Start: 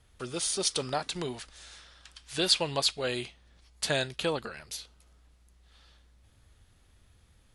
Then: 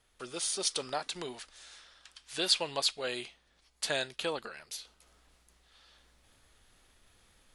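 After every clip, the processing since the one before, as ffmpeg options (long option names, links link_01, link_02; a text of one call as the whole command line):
ffmpeg -i in.wav -af "equalizer=frequency=80:width=0.49:gain=-14.5,areverse,acompressor=mode=upward:threshold=-53dB:ratio=2.5,areverse,volume=-2.5dB" out.wav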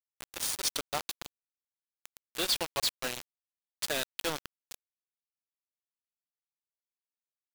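ffmpeg -i in.wav -af "asoftclip=type=hard:threshold=-28.5dB,acompressor=mode=upward:threshold=-37dB:ratio=2.5,acrusher=bits=4:mix=0:aa=0.000001" out.wav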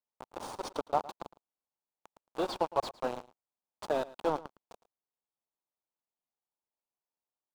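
ffmpeg -i in.wav -af "firequalizer=gain_entry='entry(110,0);entry(210,5);entry(880,11);entry(1800,-10);entry(13000,-23)':delay=0.05:min_phase=1,aecho=1:1:110:0.112,volume=-2dB" out.wav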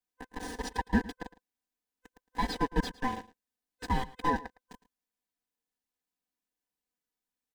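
ffmpeg -i in.wav -af "afftfilt=real='real(if(lt(b,1008),b+24*(1-2*mod(floor(b/24),2)),b),0)':imag='imag(if(lt(b,1008),b+24*(1-2*mod(floor(b/24),2)),b),0)':win_size=2048:overlap=0.75,aecho=1:1:4:0.94" out.wav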